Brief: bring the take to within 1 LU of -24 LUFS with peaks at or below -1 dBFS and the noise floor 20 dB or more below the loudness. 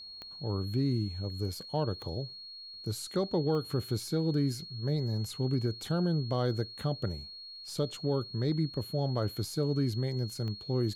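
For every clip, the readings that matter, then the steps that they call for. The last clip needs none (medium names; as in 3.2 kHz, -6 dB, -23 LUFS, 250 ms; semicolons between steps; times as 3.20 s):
clicks found 4; steady tone 4.3 kHz; tone level -44 dBFS; loudness -33.0 LUFS; peak level -20.0 dBFS; loudness target -24.0 LUFS
-> de-click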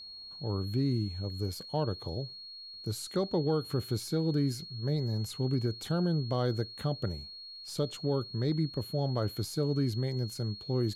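clicks found 0; steady tone 4.3 kHz; tone level -44 dBFS
-> band-stop 4.3 kHz, Q 30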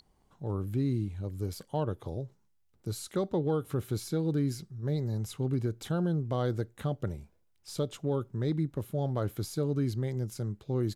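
steady tone not found; loudness -33.0 LUFS; peak level -20.5 dBFS; loudness target -24.0 LUFS
-> trim +9 dB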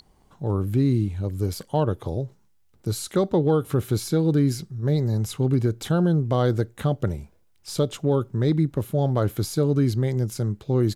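loudness -24.0 LUFS; peak level -11.5 dBFS; noise floor -60 dBFS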